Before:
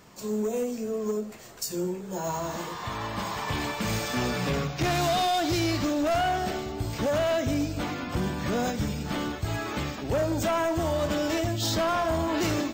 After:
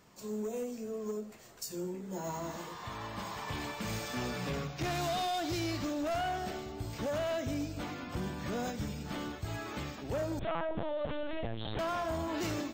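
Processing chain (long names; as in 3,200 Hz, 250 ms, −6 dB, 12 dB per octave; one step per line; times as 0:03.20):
0:01.94–0:02.52: hollow resonant body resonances 250/2,000 Hz, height 12 dB
0:10.39–0:11.79: linear-prediction vocoder at 8 kHz pitch kept
level −8.5 dB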